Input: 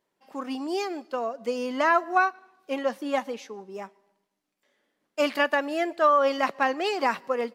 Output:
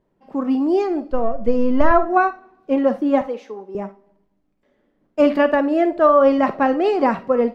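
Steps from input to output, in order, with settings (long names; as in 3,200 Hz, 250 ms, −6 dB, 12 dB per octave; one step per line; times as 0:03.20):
0:01.11–0:01.91: gain on one half-wave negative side −3 dB
0:03.21–0:03.75: high-pass filter 430 Hz 12 dB per octave
spectral tilt −5 dB per octave
convolution reverb RT60 0.20 s, pre-delay 15 ms, DRR 10.5 dB
level +4.5 dB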